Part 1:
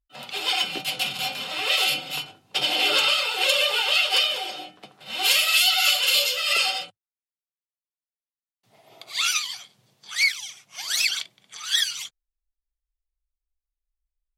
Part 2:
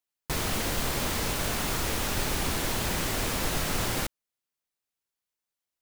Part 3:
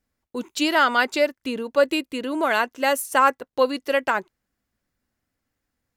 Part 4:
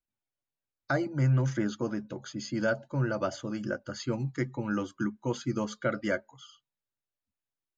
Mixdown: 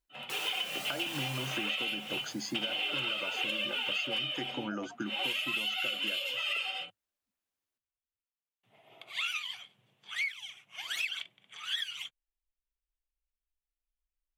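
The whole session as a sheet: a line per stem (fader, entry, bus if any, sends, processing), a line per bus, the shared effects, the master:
-7.0 dB, 0.00 s, no send, resonant high shelf 3.7 kHz -7.5 dB, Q 3
1.35 s -4.5 dB -> 1.81 s -16.5 dB, 0.00 s, no send, high-pass 370 Hz 12 dB/octave; Shepard-style flanger rising 0.74 Hz
-15.5 dB, 2.30 s, no send, loudest bins only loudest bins 1
+3.0 dB, 0.00 s, no send, high-pass 210 Hz 12 dB/octave; compression, threshold -35 dBFS, peak gain reduction 11.5 dB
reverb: none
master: compression, threshold -31 dBFS, peak gain reduction 12 dB

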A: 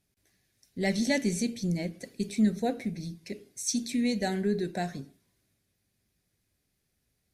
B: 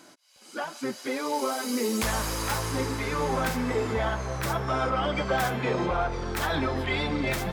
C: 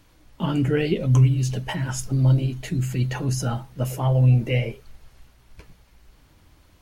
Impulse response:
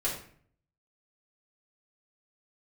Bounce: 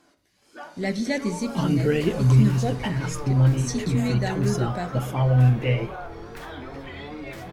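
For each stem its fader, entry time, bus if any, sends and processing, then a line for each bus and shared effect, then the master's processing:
+1.5 dB, 0.00 s, no send, none
-11.5 dB, 0.00 s, send -6.5 dB, peak limiter -20.5 dBFS, peak gain reduction 3.5 dB; wow and flutter 97 cents
-0.5 dB, 1.15 s, no send, none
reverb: on, RT60 0.55 s, pre-delay 3 ms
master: treble shelf 5.2 kHz -7 dB

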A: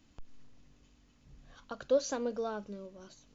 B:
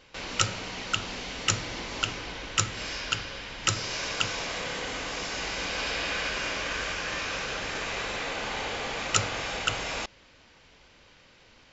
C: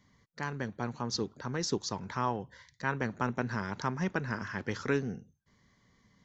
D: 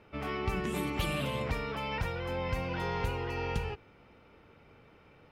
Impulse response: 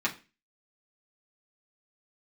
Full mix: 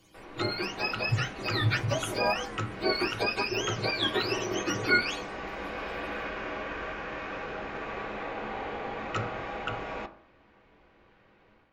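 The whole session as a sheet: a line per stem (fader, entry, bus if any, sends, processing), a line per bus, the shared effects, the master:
-4.0 dB, 0.00 s, no send, frequency axis rescaled in octaves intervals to 115%
-9.0 dB, 0.00 s, send -11.5 dB, low-pass 1.1 kHz 12 dB/octave; de-hum 47.1 Hz, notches 39; level rider gain up to 7.5 dB
0.0 dB, 0.00 s, send -6 dB, spectrum inverted on a logarithmic axis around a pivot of 780 Hz
mute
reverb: on, RT60 0.30 s, pre-delay 3 ms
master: treble shelf 3.5 kHz +8.5 dB

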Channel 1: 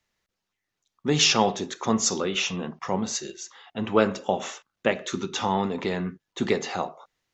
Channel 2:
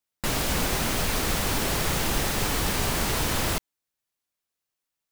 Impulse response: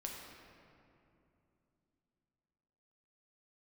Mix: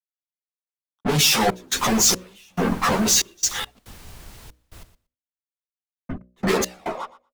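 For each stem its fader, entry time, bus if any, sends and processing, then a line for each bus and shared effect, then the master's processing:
-2.5 dB, 0.00 s, muted 3.79–6.09 s, no send, echo send -16 dB, fuzz box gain 46 dB, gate -55 dBFS; reverb removal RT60 0.66 s; three-phase chorus
-10.0 dB, 1.25 s, no send, echo send -12 dB, none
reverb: none
echo: feedback delay 118 ms, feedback 16%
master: trance gate "x.x.xxx.xx..xx" 70 bpm -24 dB; de-hum 61.22 Hz, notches 10; three bands expanded up and down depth 70%

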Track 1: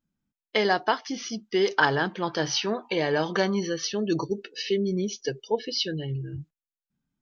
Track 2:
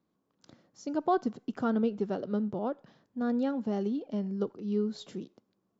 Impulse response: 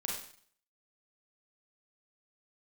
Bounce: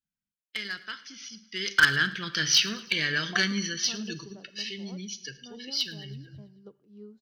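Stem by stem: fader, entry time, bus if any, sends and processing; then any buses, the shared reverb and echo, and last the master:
1.39 s -15 dB -> 1.80 s -3 dB -> 3.61 s -3 dB -> 4.27 s -10.5 dB, 0.00 s, send -14 dB, echo send -18.5 dB, FFT filter 200 Hz 0 dB, 850 Hz -22 dB, 1.4 kHz +7 dB, 3.1 kHz +9 dB; Chebyshev shaper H 3 -28 dB, 6 -43 dB, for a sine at -9.5 dBFS
-15.5 dB, 2.25 s, send -23 dB, no echo send, upward expansion 1.5:1, over -38 dBFS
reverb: on, RT60 0.55 s, pre-delay 32 ms
echo: feedback delay 109 ms, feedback 53%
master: none

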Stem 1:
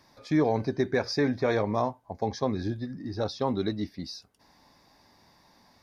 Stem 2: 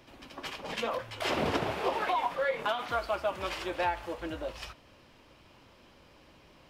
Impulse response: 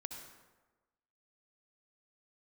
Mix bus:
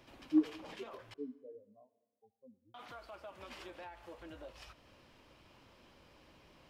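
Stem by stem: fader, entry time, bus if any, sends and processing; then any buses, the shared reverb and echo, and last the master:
-7.0 dB, 0.00 s, send -10 dB, spectral contrast expander 4:1
-5.5 dB, 0.00 s, muted 1.14–2.74 s, send -13.5 dB, compression 2.5:1, threshold -46 dBFS, peak gain reduction 14 dB; peak limiter -35.5 dBFS, peak gain reduction 6 dB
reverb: on, RT60 1.2 s, pre-delay 58 ms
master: none

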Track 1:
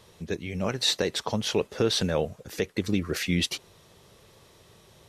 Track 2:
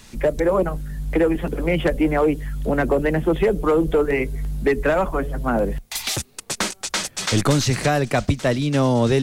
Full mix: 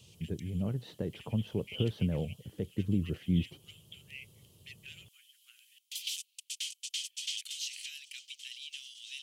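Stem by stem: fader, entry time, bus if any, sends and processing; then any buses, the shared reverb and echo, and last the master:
+2.0 dB, 0.00 s, no send, band-pass filter 120 Hz, Q 1.3; vibrato 8.2 Hz 56 cents
-13.5 dB, 0.00 s, no send, elliptic high-pass 2.6 kHz, stop band 70 dB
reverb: none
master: peaking EQ 3.1 kHz +12.5 dB 0.21 oct

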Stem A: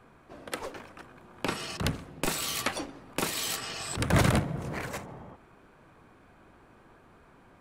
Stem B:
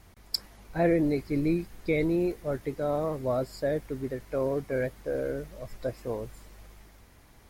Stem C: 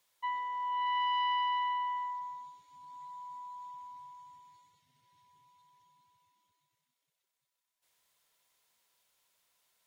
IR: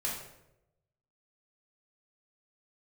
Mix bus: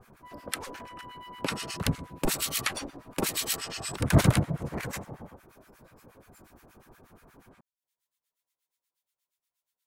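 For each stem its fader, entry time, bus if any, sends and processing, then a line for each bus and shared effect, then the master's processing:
+3.0 dB, 0.00 s, no send, bass shelf 470 Hz +3.5 dB
-12.5 dB, 0.00 s, send -9 dB, high-pass 540 Hz; tilt EQ +2 dB/octave; compression 3:1, threshold -44 dBFS, peak gain reduction 18.5 dB
-10.0 dB, 0.00 s, no send, none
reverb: on, RT60 0.90 s, pre-delay 3 ms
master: treble shelf 7.3 kHz +6 dB; harmonic tremolo 8.4 Hz, depth 100%, crossover 1.1 kHz

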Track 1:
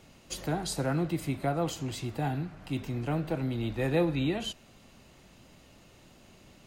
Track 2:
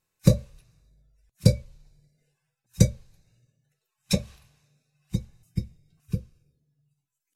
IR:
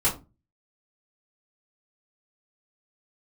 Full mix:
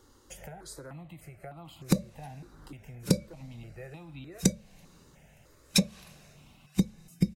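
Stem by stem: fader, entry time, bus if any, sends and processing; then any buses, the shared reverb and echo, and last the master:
0.0 dB, 0.00 s, no send, compression 10:1, threshold -38 dBFS, peak gain reduction 17 dB; stepped phaser 3.3 Hz 660–1700 Hz
+3.0 dB, 1.65 s, no send, resonant low shelf 140 Hz -8.5 dB, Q 3; level rider gain up to 8 dB; short-mantissa float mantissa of 8-bit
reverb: none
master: compression 10:1, threshold -21 dBFS, peak gain reduction 16.5 dB

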